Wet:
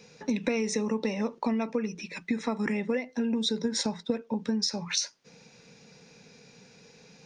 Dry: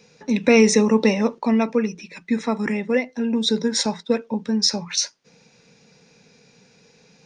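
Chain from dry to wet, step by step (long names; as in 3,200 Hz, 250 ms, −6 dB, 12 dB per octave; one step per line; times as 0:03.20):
0:03.65–0:04.23: low-shelf EQ 420 Hz +5.5 dB
downward compressor 12 to 1, threshold −25 dBFS, peak gain reduction 16 dB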